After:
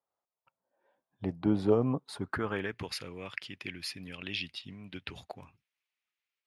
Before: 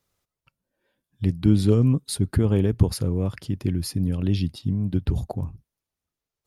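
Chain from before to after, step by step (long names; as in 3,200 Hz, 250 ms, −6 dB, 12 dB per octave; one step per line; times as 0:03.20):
band-pass filter sweep 790 Hz → 2,400 Hz, 0:02.00–0:02.87
automatic gain control gain up to 12.5 dB
level −4 dB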